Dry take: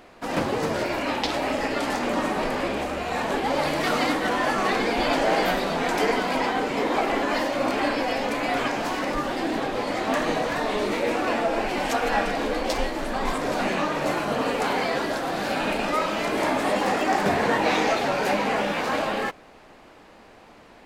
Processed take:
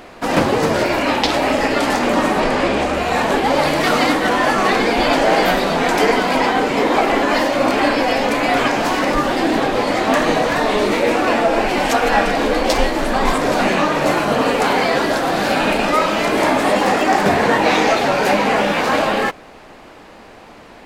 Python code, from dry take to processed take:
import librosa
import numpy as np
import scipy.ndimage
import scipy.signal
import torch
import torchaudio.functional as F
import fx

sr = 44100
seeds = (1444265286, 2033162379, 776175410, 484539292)

p1 = fx.lowpass(x, sr, hz=9400.0, slope=12, at=(2.4, 2.94))
p2 = fx.rider(p1, sr, range_db=10, speed_s=0.5)
p3 = p1 + F.gain(torch.from_numpy(p2), -1.0).numpy()
y = F.gain(torch.from_numpy(p3), 3.0).numpy()